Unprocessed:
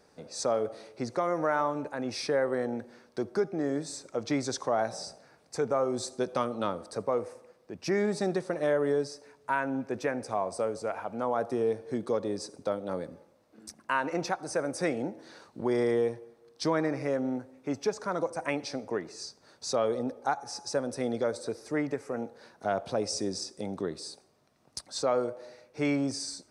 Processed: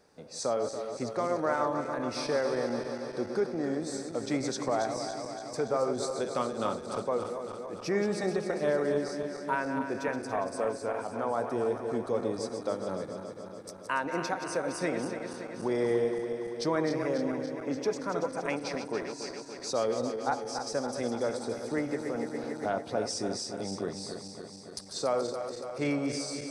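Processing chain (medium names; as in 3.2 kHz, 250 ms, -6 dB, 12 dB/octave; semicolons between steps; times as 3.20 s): backward echo that repeats 142 ms, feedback 82%, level -8 dB; 21.78–22.70 s: three bands compressed up and down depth 70%; trim -2 dB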